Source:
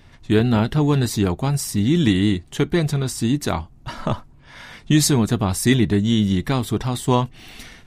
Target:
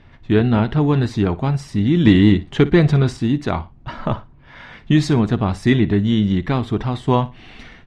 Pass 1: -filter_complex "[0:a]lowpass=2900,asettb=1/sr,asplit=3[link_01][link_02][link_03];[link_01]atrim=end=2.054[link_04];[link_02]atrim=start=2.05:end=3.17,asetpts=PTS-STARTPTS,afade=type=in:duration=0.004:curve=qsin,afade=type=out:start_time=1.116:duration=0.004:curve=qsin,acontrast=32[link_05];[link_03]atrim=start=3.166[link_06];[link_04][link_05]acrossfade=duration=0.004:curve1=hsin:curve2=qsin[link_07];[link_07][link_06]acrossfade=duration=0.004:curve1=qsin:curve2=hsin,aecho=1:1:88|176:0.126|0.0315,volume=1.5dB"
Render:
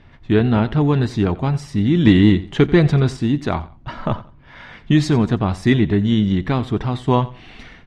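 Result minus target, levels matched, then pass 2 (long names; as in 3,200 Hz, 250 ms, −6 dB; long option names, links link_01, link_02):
echo 30 ms late
-filter_complex "[0:a]lowpass=2900,asettb=1/sr,asplit=3[link_01][link_02][link_03];[link_01]atrim=end=2.054[link_04];[link_02]atrim=start=2.05:end=3.17,asetpts=PTS-STARTPTS,afade=type=in:duration=0.004:curve=qsin,afade=type=out:start_time=1.116:duration=0.004:curve=qsin,acontrast=32[link_05];[link_03]atrim=start=3.166[link_06];[link_04][link_05]acrossfade=duration=0.004:curve1=hsin:curve2=qsin[link_07];[link_07][link_06]acrossfade=duration=0.004:curve1=qsin:curve2=hsin,aecho=1:1:58|116:0.126|0.0315,volume=1.5dB"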